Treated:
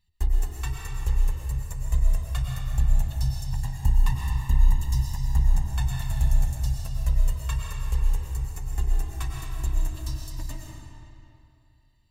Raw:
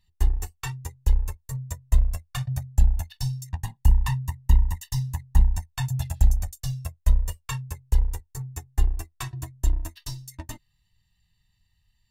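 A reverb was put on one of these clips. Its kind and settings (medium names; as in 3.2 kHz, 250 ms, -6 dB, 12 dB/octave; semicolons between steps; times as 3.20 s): algorithmic reverb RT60 2.7 s, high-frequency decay 0.75×, pre-delay 75 ms, DRR -1.5 dB; trim -4 dB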